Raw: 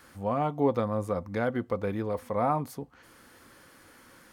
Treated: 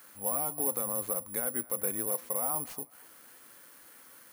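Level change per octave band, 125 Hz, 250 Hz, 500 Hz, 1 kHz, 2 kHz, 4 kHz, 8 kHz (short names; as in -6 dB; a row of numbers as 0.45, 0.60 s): -16.0, -11.5, -9.0, -9.5, -7.0, -4.0, +23.0 dB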